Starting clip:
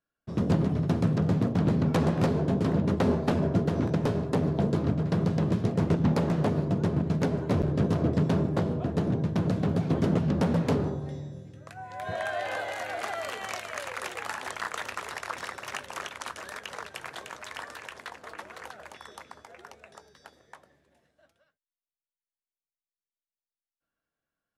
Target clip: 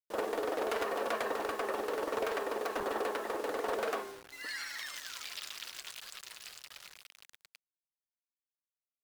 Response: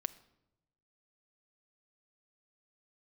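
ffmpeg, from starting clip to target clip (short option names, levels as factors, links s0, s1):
-af "acrusher=bits=6:mix=0:aa=0.000001,asetrate=119952,aresample=44100,equalizer=f=240:w=2.3:g=-11.5,volume=0.398"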